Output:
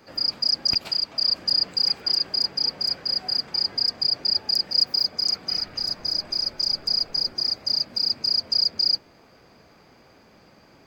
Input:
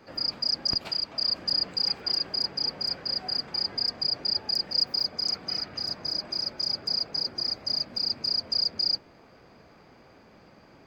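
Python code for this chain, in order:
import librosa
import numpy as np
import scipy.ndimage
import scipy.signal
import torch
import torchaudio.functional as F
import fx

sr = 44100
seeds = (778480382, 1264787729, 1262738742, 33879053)

y = fx.rattle_buzz(x, sr, strikes_db=-37.0, level_db=-21.0)
y = fx.high_shelf(y, sr, hz=4500.0, db=9.0)
y = fx.dmg_noise_colour(y, sr, seeds[0], colour='brown', level_db=-51.0, at=(5.5, 7.32), fade=0.02)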